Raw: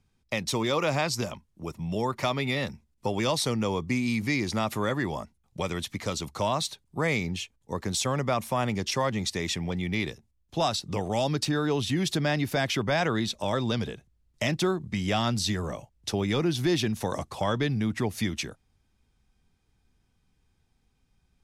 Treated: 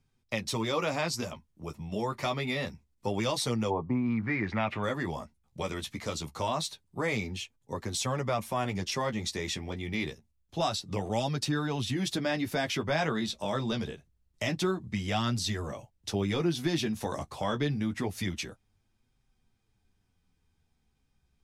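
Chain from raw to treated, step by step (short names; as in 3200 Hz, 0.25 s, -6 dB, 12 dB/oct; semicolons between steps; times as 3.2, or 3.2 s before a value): 3.69–4.82 synth low-pass 740 Hz -> 2800 Hz, resonance Q 3.4; flange 0.26 Hz, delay 7.4 ms, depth 7.3 ms, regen -22%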